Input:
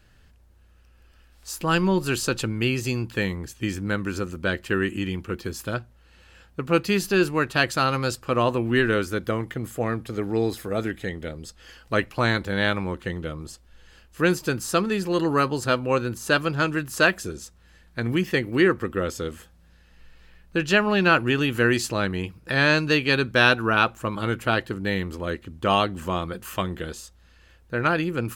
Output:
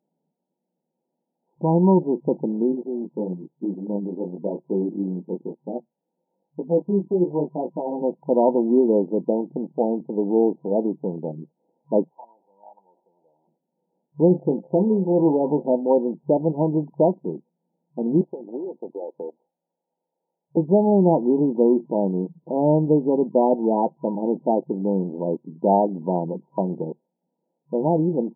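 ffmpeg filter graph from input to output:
-filter_complex "[0:a]asettb=1/sr,asplit=3[a][b][c];[a]atrim=end=2.724[d];[b]atrim=start=2.72:end=8.02,asetpts=PTS-STARTPTS,afade=t=in:d=0.004:c=qsin,afade=t=out:st=5.296:d=0.004:c=qsin,deesser=0.95,equalizer=f=120:w=1.4:g=-4,flanger=delay=16:depth=7:speed=1[e];[c]atrim=start=8.016[f];[d][e]acrossfade=d=0.004:c1=hsin:c2=qsin[g];[g][f]acrossfade=d=0.004:c1=qsin:c2=hsin,asettb=1/sr,asplit=3[h][i][j];[h]atrim=end=12.084[k];[i]atrim=start=12.08:end=13.48,asetpts=PTS-STARTPTS,afade=t=in:d=0.004:c=qsin,afade=t=out:st=1.396:d=0.004:c=qsin,aeval=exprs='val(0)+0.5*0.075*sgn(val(0))':c=same,aderivative,asplit=2[l][m];[m]highpass=f=720:p=1,volume=7dB,asoftclip=type=tanh:threshold=-15dB[n];[l][n]amix=inputs=2:normalize=0,lowpass=f=5.5k:p=1,volume=-6dB[o];[j]atrim=start=13.476[p];[k][o]acrossfade=d=0.004:c1=hsin:c2=qsin[q];[q][p]acrossfade=d=0.004:c1=qsin:c2=hsin,asettb=1/sr,asplit=3[r][s][t];[r]atrim=end=14.284[u];[s]atrim=start=14.28:end=15.76,asetpts=PTS-STARTPTS,afade=t=in:d=0.004:c=qsin,afade=t=out:st=1.476:d=0.004:c=qsin,aeval=exprs='val(0)+0.00447*sin(2*PI*520*n/s)':c=same,asoftclip=type=hard:threshold=-15.5dB,asplit=2[v][w];[w]adelay=27,volume=-12dB[x];[v][x]amix=inputs=2:normalize=0,atrim=end_sample=65268[y];[t]atrim=start=15.756[z];[u][y]acrossfade=d=0.004:c1=hsin:c2=qsin[aa];[aa][z]acrossfade=d=0.004:c1=qsin:c2=hsin,asettb=1/sr,asplit=3[ab][ac][ad];[ab]atrim=end=18.214[ae];[ac]atrim=start=18.21:end=20.57,asetpts=PTS-STARTPTS,afade=t=in:d=0.004:c=qsin,afade=t=out:st=2.356:d=0.004:c=qsin,highpass=480,acompressor=threshold=-29dB:ratio=8:attack=3.2:release=140:knee=1:detection=peak[af];[ad]atrim=start=20.566[ag];[ae][af]acrossfade=d=0.004:c1=hsin:c2=qsin[ah];[ah][ag]acrossfade=d=0.004:c1=qsin:c2=hsin,afwtdn=0.0251,afftfilt=real='re*between(b*sr/4096,150,970)':imag='im*between(b*sr/4096,150,970)':win_size=4096:overlap=0.75,volume=5.5dB"

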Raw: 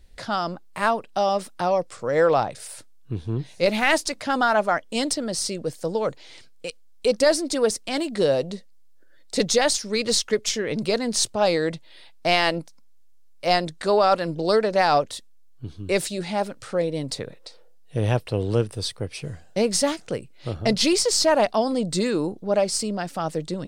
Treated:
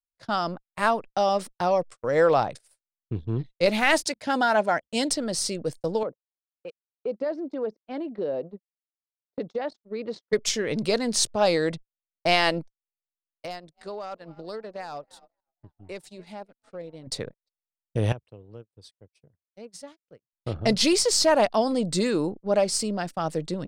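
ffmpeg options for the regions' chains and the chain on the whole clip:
-filter_complex "[0:a]asettb=1/sr,asplit=3[a][b][c];[a]atrim=end=4.034[d];[b]atrim=start=4.03:end=5.1,asetpts=PTS-STARTPTS,afade=t=in:d=0.004:c=qsin,afade=t=out:st=1.066:d=0.004:c=qsin,highpass=66,bandreject=f=1.2k:w=5[e];[c]atrim=start=5.096[f];[d][e]acrossfade=d=0.004:c1=hsin:c2=qsin[g];[g][f]acrossfade=d=0.004:c1=qsin:c2=hsin,asettb=1/sr,asplit=3[h][i][j];[h]atrim=end=6.034[k];[i]atrim=start=6.03:end=10.33,asetpts=PTS-STARTPTS,afade=t=in:d=0.004:c=qsin,afade=t=out:st=4.296:d=0.004:c=qsin,tiltshelf=f=1.2k:g=7.5,acompressor=threshold=-34dB:ratio=2:attack=3.2:release=140:knee=1:detection=peak,highpass=240,lowpass=3.4k[l];[j]atrim=start=10.326[m];[k][l]acrossfade=d=0.004:c1=hsin:c2=qsin[n];[n][m]acrossfade=d=0.004:c1=qsin:c2=hsin,asettb=1/sr,asplit=3[o][p][q];[o]atrim=end=13.454[r];[p]atrim=start=13.45:end=17.07,asetpts=PTS-STARTPTS,afade=t=in:d=0.004:c=qsin,afade=t=out:st=3.616:d=0.004:c=qsin,asoftclip=type=hard:threshold=-11dB,asplit=6[s][t][u][v][w][x];[t]adelay=267,afreqshift=43,volume=-20.5dB[y];[u]adelay=534,afreqshift=86,volume=-24.5dB[z];[v]adelay=801,afreqshift=129,volume=-28.5dB[aa];[w]adelay=1068,afreqshift=172,volume=-32.5dB[ab];[x]adelay=1335,afreqshift=215,volume=-36.6dB[ac];[s][y][z][aa][ab][ac]amix=inputs=6:normalize=0,atrim=end_sample=159642,acompressor=threshold=-32dB:ratio=6:attack=3.2:release=140:knee=1:detection=peak[ad];[q]atrim=start=17.066[ae];[r][ad]acrossfade=d=0.004:c1=hsin:c2=qsin[af];[af][ae]acrossfade=d=0.004:c1=qsin:c2=hsin,asettb=1/sr,asplit=3[ag][ah][ai];[ag]atrim=end=18.124[aj];[ah]atrim=start=18.12:end=20.33,asetpts=PTS-STARTPTS,afade=t=in:d=0.004:c=qsin,afade=t=out:st=2.206:d=0.004:c=qsin,highpass=f=46:w=0.5412,highpass=f=46:w=1.3066,acompressor=threshold=-34dB:ratio=5:attack=3.2:release=140:knee=1:detection=peak[ak];[ai]atrim=start=20.326[al];[aj][ak]acrossfade=d=0.004:c1=hsin:c2=qsin[am];[am][al]acrossfade=d=0.004:c1=qsin:c2=hsin,anlmdn=0.1,agate=range=-51dB:threshold=-34dB:ratio=16:detection=peak,volume=-1dB"

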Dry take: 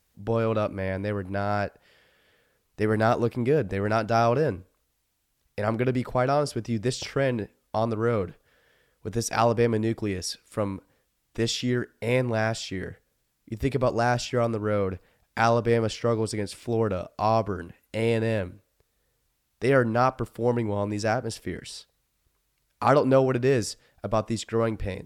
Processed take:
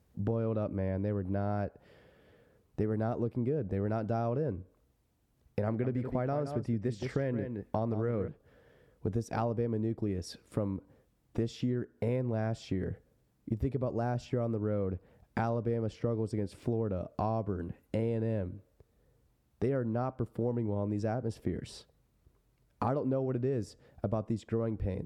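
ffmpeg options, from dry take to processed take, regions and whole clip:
-filter_complex "[0:a]asettb=1/sr,asplit=3[a][b][c];[a]atrim=end=5.664[d];[b]atrim=start=5.66:end=8.28,asetpts=PTS-STARTPTS,afade=t=in:d=0.004:c=qsin,afade=t=out:st=2.616:d=0.004:c=qsin,equalizer=f=1.9k:t=o:w=0.58:g=7.5,aecho=1:1:170:0.282,atrim=end_sample=115542[e];[c]atrim=start=8.276[f];[d][e]acrossfade=d=0.004:c1=hsin:c2=qsin[g];[g][f]acrossfade=d=0.004:c1=qsin:c2=hsin,highpass=56,tiltshelf=f=970:g=9.5,acompressor=threshold=-30dB:ratio=6"

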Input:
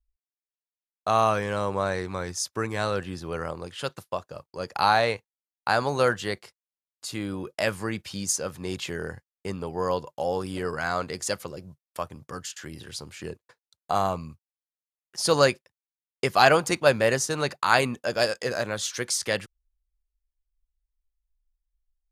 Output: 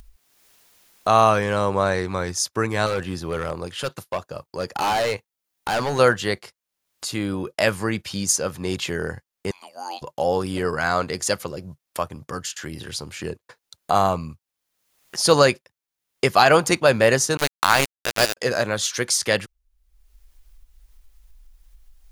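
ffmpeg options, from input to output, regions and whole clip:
-filter_complex "[0:a]asettb=1/sr,asplit=3[a][b][c];[a]atrim=end=2.864[d];[b]atrim=start=2.86:end=5.99,asetpts=PTS-STARTPTS,afade=t=in:d=0.004:c=qsin,afade=t=out:st=3.126:d=0.004:c=qsin,highshelf=f=11k:g=4,volume=25dB,asoftclip=hard,volume=-25dB[e];[c]atrim=start=5.986[f];[d][e]acrossfade=d=0.004:c1=hsin:c2=qsin[g];[g][f]acrossfade=d=0.004:c1=qsin:c2=hsin,asettb=1/sr,asplit=3[h][i][j];[h]atrim=end=9.514[k];[i]atrim=start=9.51:end=10.02,asetpts=PTS-STARTPTS,afade=t=in:d=0.004:c=qsin,afade=t=out:st=0.506:d=0.004:c=qsin,highpass=f=1.1k:w=0.5412,highpass=f=1.1k:w=1.3066,equalizer=f=1.6k:t=o:w=0.99:g=-8.5,afreqshift=-210[l];[j]atrim=start=10.016[m];[k][l]acrossfade=d=0.004:c1=hsin:c2=qsin[n];[n][m]acrossfade=d=0.004:c1=qsin:c2=hsin,asettb=1/sr,asplit=3[o][p][q];[o]atrim=end=17.374[r];[p]atrim=start=17.37:end=18.37,asetpts=PTS-STARTPTS,afade=t=in:d=0.004:c=qsin,afade=t=out:st=0.996:d=0.004:c=qsin,highshelf=f=7.9k:g=6,aeval=exprs='val(0)*gte(abs(val(0)),0.1)':c=same[s];[q]atrim=start=18.366[t];[r][s]acrossfade=d=0.004:c1=hsin:c2=qsin[u];[u][t]acrossfade=d=0.004:c1=qsin:c2=hsin,bandreject=f=8k:w=23,acompressor=mode=upward:threshold=-36dB:ratio=2.5,alimiter=level_in=7dB:limit=-1dB:release=50:level=0:latency=1,volume=-1dB"

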